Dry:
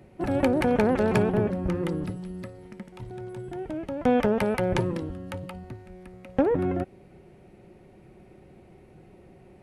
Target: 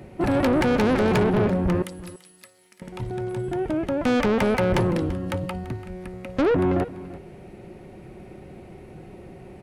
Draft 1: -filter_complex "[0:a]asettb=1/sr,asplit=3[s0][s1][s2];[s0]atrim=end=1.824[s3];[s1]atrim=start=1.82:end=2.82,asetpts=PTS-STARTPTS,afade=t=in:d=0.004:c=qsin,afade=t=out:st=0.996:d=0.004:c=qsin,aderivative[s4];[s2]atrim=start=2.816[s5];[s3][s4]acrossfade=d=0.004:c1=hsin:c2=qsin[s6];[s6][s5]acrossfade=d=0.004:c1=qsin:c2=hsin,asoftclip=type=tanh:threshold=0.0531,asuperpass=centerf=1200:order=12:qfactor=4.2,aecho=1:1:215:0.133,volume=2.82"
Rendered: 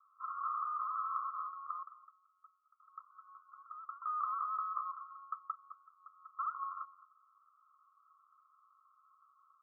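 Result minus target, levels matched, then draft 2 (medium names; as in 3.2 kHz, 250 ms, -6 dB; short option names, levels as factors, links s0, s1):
1 kHz band +9.5 dB; echo 123 ms early
-filter_complex "[0:a]asettb=1/sr,asplit=3[s0][s1][s2];[s0]atrim=end=1.824[s3];[s1]atrim=start=1.82:end=2.82,asetpts=PTS-STARTPTS,afade=t=in:d=0.004:c=qsin,afade=t=out:st=0.996:d=0.004:c=qsin,aderivative[s4];[s2]atrim=start=2.816[s5];[s3][s4]acrossfade=d=0.004:c1=hsin:c2=qsin[s6];[s6][s5]acrossfade=d=0.004:c1=qsin:c2=hsin,asoftclip=type=tanh:threshold=0.0531,aecho=1:1:338:0.133,volume=2.82"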